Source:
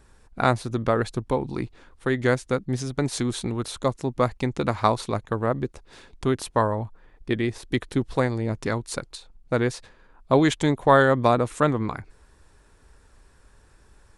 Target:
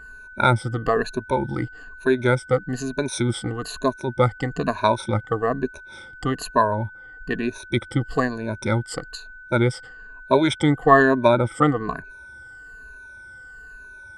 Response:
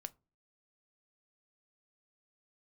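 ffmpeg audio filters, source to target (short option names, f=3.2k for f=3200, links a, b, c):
-af "afftfilt=real='re*pow(10,21/40*sin(2*PI*(1.5*log(max(b,1)*sr/1024/100)/log(2)-(-1.1)*(pts-256)/sr)))':imag='im*pow(10,21/40*sin(2*PI*(1.5*log(max(b,1)*sr/1024/100)/log(2)-(-1.1)*(pts-256)/sr)))':win_size=1024:overlap=0.75,aeval=exprs='val(0)+0.0126*sin(2*PI*1500*n/s)':c=same,adynamicequalizer=threshold=0.0126:dfrequency=3900:dqfactor=0.7:tfrequency=3900:tqfactor=0.7:attack=5:release=100:ratio=0.375:range=4:mode=cutabove:tftype=highshelf,volume=-2dB"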